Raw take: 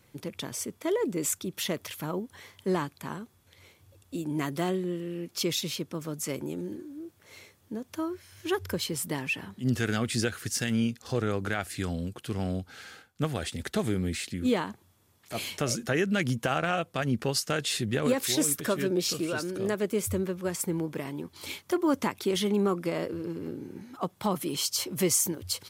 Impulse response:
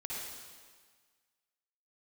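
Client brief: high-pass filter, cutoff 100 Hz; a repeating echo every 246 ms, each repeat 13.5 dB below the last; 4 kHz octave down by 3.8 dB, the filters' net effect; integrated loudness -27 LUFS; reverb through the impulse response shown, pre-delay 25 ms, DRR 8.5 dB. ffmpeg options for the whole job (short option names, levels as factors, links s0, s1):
-filter_complex "[0:a]highpass=100,equalizer=f=4000:t=o:g=-5,aecho=1:1:246|492:0.211|0.0444,asplit=2[s0][s1];[1:a]atrim=start_sample=2205,adelay=25[s2];[s1][s2]afir=irnorm=-1:irlink=0,volume=0.316[s3];[s0][s3]amix=inputs=2:normalize=0,volume=1.5"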